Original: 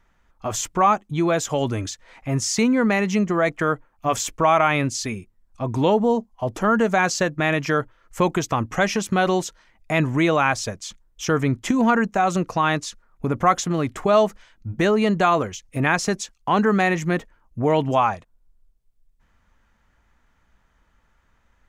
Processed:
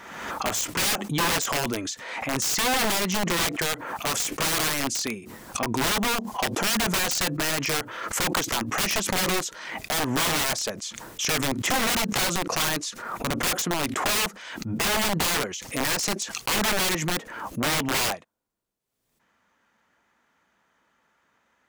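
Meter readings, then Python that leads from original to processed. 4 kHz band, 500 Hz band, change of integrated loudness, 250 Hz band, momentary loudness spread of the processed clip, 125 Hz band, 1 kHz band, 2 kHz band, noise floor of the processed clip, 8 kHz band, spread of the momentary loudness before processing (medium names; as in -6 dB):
+7.0 dB, -9.5 dB, -3.5 dB, -8.0 dB, 8 LU, -8.0 dB, -7.0 dB, -1.5 dB, -69 dBFS, +5.0 dB, 12 LU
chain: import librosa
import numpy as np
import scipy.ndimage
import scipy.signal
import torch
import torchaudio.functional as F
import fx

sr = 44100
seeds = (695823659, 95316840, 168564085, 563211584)

y = scipy.signal.sosfilt(scipy.signal.butter(2, 240.0, 'highpass', fs=sr, output='sos'), x)
y = (np.mod(10.0 ** (19.0 / 20.0) * y + 1.0, 2.0) - 1.0) / 10.0 ** (19.0 / 20.0)
y = fx.pre_swell(y, sr, db_per_s=45.0)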